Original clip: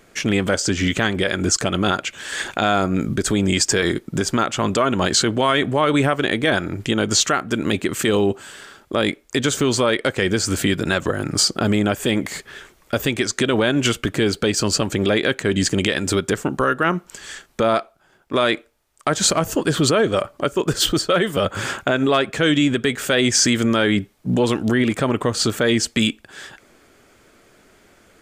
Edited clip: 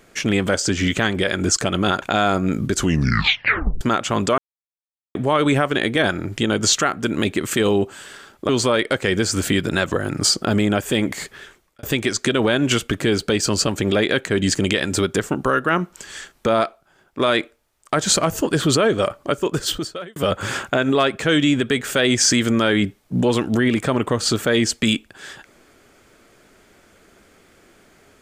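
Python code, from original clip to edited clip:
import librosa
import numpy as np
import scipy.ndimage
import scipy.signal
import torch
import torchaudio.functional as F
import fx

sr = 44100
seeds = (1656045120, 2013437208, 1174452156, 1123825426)

y = fx.edit(x, sr, fx.cut(start_s=2.02, length_s=0.48),
    fx.tape_stop(start_s=3.2, length_s=1.09),
    fx.silence(start_s=4.86, length_s=0.77),
    fx.cut(start_s=8.97, length_s=0.66),
    fx.fade_out_span(start_s=12.45, length_s=0.52),
    fx.fade_out_span(start_s=20.52, length_s=0.78), tone=tone)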